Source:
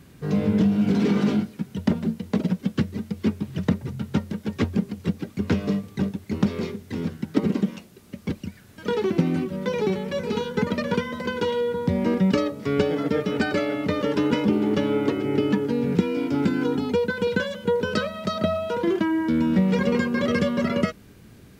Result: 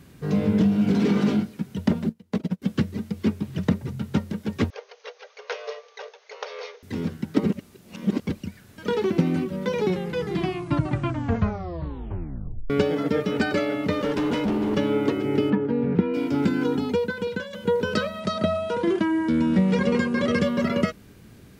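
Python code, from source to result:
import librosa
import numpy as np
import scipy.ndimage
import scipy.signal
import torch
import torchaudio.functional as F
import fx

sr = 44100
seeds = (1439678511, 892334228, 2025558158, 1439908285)

y = fx.upward_expand(x, sr, threshold_db=-34.0, expansion=2.5, at=(2.09, 2.62))
y = fx.brickwall_bandpass(y, sr, low_hz=420.0, high_hz=6700.0, at=(4.7, 6.83))
y = fx.clip_hard(y, sr, threshold_db=-20.5, at=(13.92, 14.77))
y = fx.lowpass(y, sr, hz=1900.0, slope=12, at=(15.5, 16.14))
y = fx.resample_bad(y, sr, factor=2, down='none', up='filtered', at=(18.2, 20.43))
y = fx.edit(y, sr, fx.reverse_span(start_s=7.53, length_s=0.67),
    fx.tape_stop(start_s=9.82, length_s=2.88),
    fx.fade_out_to(start_s=16.83, length_s=0.7, floor_db=-9.5), tone=tone)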